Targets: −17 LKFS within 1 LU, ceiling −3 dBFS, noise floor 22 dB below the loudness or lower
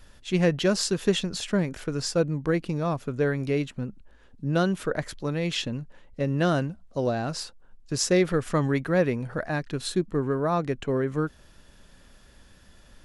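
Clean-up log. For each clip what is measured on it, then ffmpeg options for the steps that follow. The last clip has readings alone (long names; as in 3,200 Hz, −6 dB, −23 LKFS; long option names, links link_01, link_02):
integrated loudness −27.0 LKFS; sample peak −9.0 dBFS; target loudness −17.0 LKFS
→ -af "volume=10dB,alimiter=limit=-3dB:level=0:latency=1"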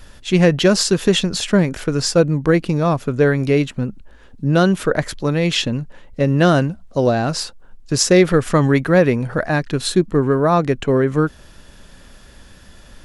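integrated loudness −17.5 LKFS; sample peak −3.0 dBFS; background noise floor −44 dBFS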